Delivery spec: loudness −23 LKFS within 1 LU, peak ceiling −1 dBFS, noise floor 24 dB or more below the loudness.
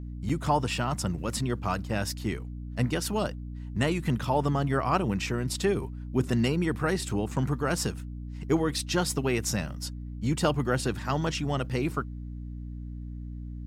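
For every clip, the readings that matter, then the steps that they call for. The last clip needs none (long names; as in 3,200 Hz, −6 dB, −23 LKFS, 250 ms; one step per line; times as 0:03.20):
number of dropouts 1; longest dropout 4.9 ms; mains hum 60 Hz; hum harmonics up to 300 Hz; level of the hum −35 dBFS; integrated loudness −29.0 LKFS; sample peak −11.0 dBFS; target loudness −23.0 LKFS
→ repair the gap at 0:00.29, 4.9 ms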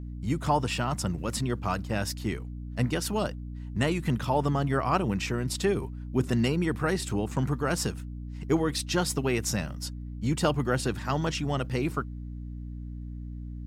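number of dropouts 0; mains hum 60 Hz; hum harmonics up to 300 Hz; level of the hum −35 dBFS
→ mains-hum notches 60/120/180/240/300 Hz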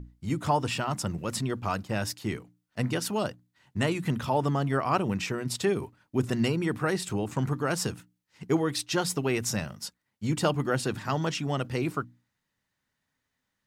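mains hum none found; integrated loudness −29.5 LKFS; sample peak −12.0 dBFS; target loudness −23.0 LKFS
→ level +6.5 dB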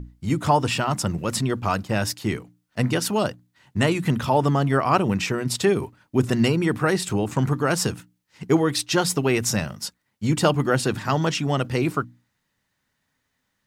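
integrated loudness −23.0 LKFS; sample peak −5.5 dBFS; background noise floor −75 dBFS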